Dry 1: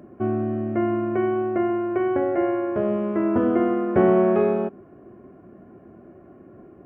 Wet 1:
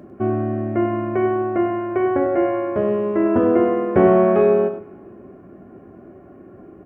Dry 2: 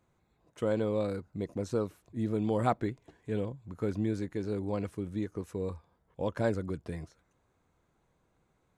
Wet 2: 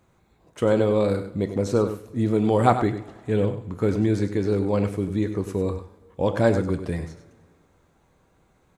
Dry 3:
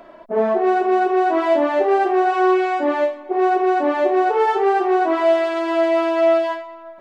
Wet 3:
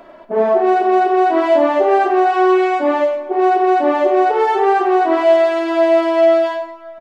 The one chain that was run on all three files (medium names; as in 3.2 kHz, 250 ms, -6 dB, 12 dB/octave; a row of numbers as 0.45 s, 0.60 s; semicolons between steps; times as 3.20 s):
on a send: delay 99 ms -10.5 dB; on the sum: two-slope reverb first 0.37 s, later 2.1 s, from -17 dB, DRR 9.5 dB; peak normalisation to -3 dBFS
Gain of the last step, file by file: +3.5 dB, +10.0 dB, +2.0 dB